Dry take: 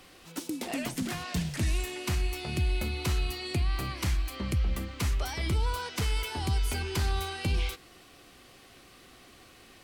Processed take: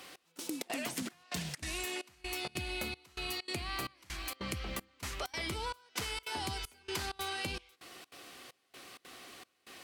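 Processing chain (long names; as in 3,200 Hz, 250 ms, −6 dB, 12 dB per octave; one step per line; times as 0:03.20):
high-pass filter 420 Hz 6 dB per octave
downward compressor, threshold −38 dBFS, peak gain reduction 8 dB
gate pattern "xx...xxx.xxx" 194 BPM −24 dB
level +4 dB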